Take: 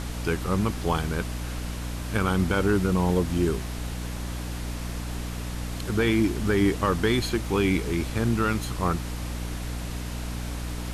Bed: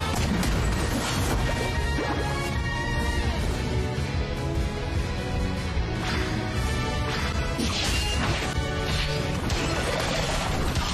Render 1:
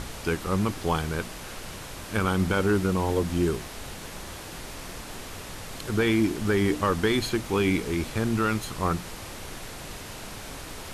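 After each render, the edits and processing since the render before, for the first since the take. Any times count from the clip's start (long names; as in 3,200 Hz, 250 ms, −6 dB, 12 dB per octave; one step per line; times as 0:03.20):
mains-hum notches 60/120/180/240/300 Hz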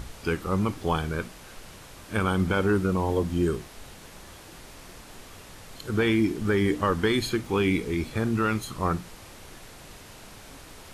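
noise reduction from a noise print 7 dB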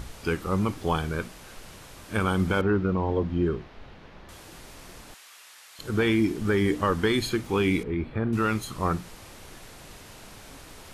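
0:02.61–0:04.29: high-frequency loss of the air 270 metres
0:05.14–0:05.79: high-pass filter 1,300 Hz
0:07.83–0:08.33: high-frequency loss of the air 470 metres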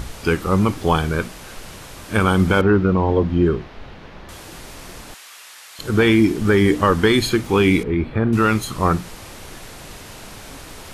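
level +8.5 dB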